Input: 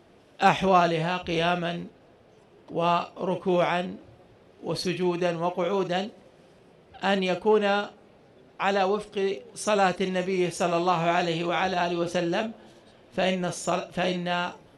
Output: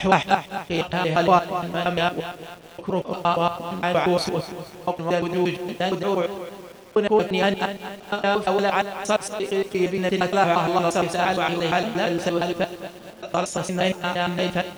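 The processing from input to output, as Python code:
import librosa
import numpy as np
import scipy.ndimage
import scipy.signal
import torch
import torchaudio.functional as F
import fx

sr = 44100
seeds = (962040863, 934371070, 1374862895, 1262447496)

y = fx.block_reorder(x, sr, ms=116.0, group=6)
y = fx.echo_feedback(y, sr, ms=205, feedback_pct=43, wet_db=-19.0)
y = fx.echo_crushed(y, sr, ms=230, feedback_pct=55, bits=7, wet_db=-11.5)
y = y * 10.0 ** (3.5 / 20.0)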